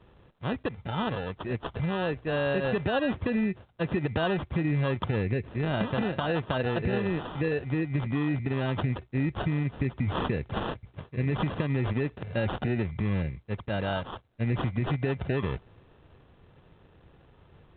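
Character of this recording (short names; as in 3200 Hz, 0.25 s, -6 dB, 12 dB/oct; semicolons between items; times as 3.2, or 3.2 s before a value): aliases and images of a low sample rate 2200 Hz, jitter 0%; A-law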